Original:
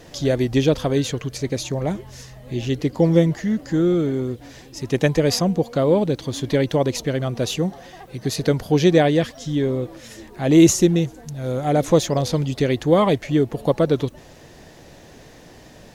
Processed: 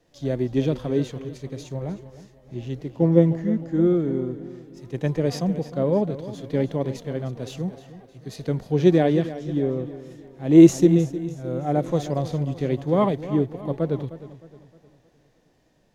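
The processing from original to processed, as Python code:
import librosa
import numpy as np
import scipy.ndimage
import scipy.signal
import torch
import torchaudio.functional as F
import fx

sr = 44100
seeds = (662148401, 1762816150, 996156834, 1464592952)

p1 = fx.backlash(x, sr, play_db=-27.0)
p2 = x + F.gain(torch.from_numpy(p1), -10.5).numpy()
p3 = fx.high_shelf(p2, sr, hz=2000.0, db=-8.5)
p4 = fx.hpss(p3, sr, part='percussive', gain_db=-8)
p5 = fx.peak_eq(p4, sr, hz=76.0, db=-7.0, octaves=1.1)
p6 = p5 + fx.echo_feedback(p5, sr, ms=309, feedback_pct=54, wet_db=-12.0, dry=0)
p7 = fx.band_widen(p6, sr, depth_pct=40)
y = F.gain(torch.from_numpy(p7), -3.5).numpy()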